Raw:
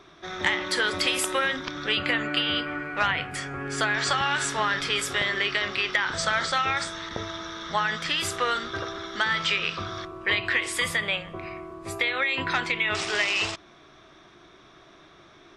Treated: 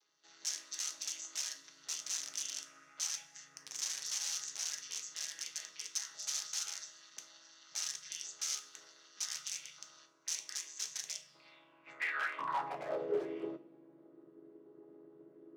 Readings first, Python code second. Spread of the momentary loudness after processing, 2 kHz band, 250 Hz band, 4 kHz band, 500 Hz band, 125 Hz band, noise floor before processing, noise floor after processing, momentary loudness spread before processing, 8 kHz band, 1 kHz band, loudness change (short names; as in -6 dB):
20 LU, -21.0 dB, -18.0 dB, -15.0 dB, -12.5 dB, under -25 dB, -53 dBFS, -64 dBFS, 10 LU, -1.0 dB, -17.0 dB, -13.5 dB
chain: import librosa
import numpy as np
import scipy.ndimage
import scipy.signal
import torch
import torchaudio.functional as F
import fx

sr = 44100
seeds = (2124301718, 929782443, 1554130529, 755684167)

y = fx.chord_vocoder(x, sr, chord='minor triad', root=49)
y = (np.mod(10.0 ** (20.0 / 20.0) * y + 1.0, 2.0) - 1.0) / 10.0 ** (20.0 / 20.0)
y = fx.rev_double_slope(y, sr, seeds[0], early_s=0.3, late_s=1.5, knee_db=-20, drr_db=6.5)
y = fx.filter_sweep_bandpass(y, sr, from_hz=6100.0, to_hz=380.0, start_s=11.2, end_s=13.23, q=5.3)
y = F.gain(torch.from_numpy(y), 1.0).numpy()